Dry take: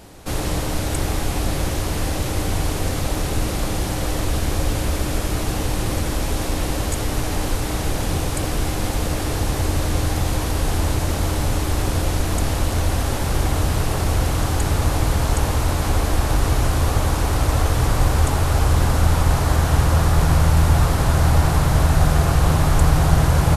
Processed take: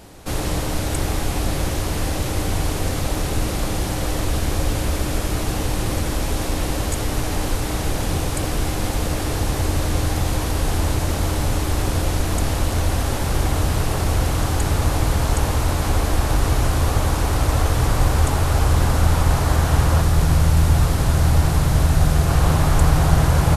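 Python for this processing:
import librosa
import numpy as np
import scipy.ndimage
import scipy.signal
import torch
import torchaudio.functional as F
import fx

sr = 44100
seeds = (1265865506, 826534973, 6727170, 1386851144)

y = fx.peak_eq(x, sr, hz=1000.0, db=-4.0, octaves=2.2, at=(20.01, 22.3))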